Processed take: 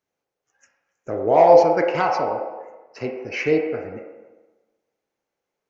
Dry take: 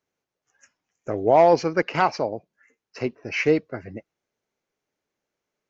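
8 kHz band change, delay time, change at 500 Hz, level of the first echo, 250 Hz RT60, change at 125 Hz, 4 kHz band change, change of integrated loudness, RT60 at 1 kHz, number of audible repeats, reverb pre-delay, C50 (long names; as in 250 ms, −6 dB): can't be measured, no echo audible, +4.0 dB, no echo audible, 1.2 s, −2.0 dB, −1.5 dB, +3.0 dB, 1.2 s, no echo audible, 21 ms, 3.0 dB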